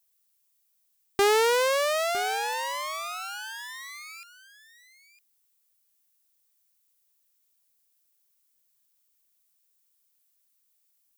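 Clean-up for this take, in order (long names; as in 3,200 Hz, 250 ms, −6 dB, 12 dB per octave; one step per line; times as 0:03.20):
downward expander −63 dBFS, range −21 dB
echo removal 957 ms −15 dB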